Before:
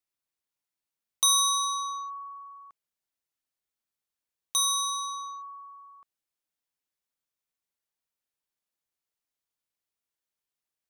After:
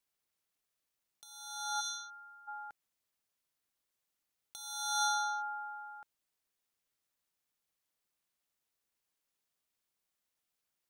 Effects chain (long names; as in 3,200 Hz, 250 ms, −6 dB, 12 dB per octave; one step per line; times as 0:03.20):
compressor whose output falls as the input rises −33 dBFS, ratio −0.5
ring modulation 280 Hz
gain on a spectral selection 0:01.81–0:02.48, 640–1,400 Hz −25 dB
level +1 dB